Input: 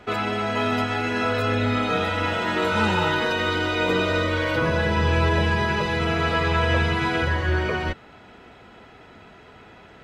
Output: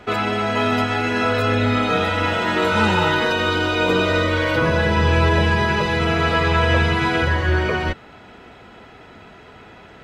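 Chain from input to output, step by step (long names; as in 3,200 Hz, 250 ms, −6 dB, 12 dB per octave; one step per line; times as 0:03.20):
0:03.31–0:04.05: notch filter 2,000 Hz, Q 9.3
level +4 dB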